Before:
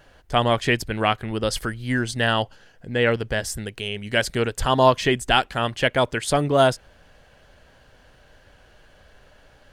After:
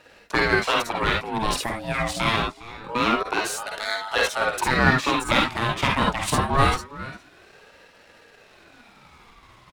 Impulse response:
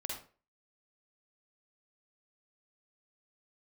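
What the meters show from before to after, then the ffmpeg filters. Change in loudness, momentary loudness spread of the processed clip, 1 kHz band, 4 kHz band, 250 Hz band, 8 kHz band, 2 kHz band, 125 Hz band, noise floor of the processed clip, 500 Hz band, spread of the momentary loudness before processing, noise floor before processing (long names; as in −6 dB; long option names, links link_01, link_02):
−0.5 dB, 9 LU, +0.5 dB, −1.0 dB, −1.0 dB, +0.5 dB, +2.0 dB, −2.0 dB, −53 dBFS, −5.5 dB, 11 LU, −55 dBFS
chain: -filter_complex "[0:a]aeval=exprs='if(lt(val(0),0),0.447*val(0),val(0))':channel_layout=same,asplit=2[link_01][link_02];[link_02]acompressor=threshold=-30dB:ratio=6,volume=1.5dB[link_03];[link_01][link_03]amix=inputs=2:normalize=0,asplit=2[link_04][link_05];[link_05]adelay=408.2,volume=-16dB,highshelf=frequency=4000:gain=-9.18[link_06];[link_04][link_06]amix=inputs=2:normalize=0,acrossover=split=110|840[link_07][link_08][link_09];[link_07]acrusher=bits=3:mix=0:aa=0.5[link_10];[link_10][link_08][link_09]amix=inputs=3:normalize=0[link_11];[1:a]atrim=start_sample=2205,atrim=end_sample=3528[link_12];[link_11][link_12]afir=irnorm=-1:irlink=0,aeval=exprs='val(0)*sin(2*PI*750*n/s+750*0.45/0.25*sin(2*PI*0.25*n/s))':channel_layout=same,volume=2.5dB"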